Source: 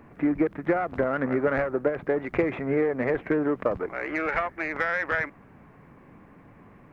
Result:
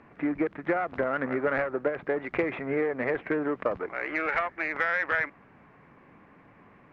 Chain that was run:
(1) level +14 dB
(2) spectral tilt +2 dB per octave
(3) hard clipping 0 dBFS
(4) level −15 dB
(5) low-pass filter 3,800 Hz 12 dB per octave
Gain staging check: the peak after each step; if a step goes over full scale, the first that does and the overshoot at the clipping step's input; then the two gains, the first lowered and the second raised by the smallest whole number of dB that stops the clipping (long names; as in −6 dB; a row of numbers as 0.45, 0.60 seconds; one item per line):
+3.0, +3.5, 0.0, −15.0, −14.5 dBFS
step 1, 3.5 dB
step 1 +10 dB, step 4 −11 dB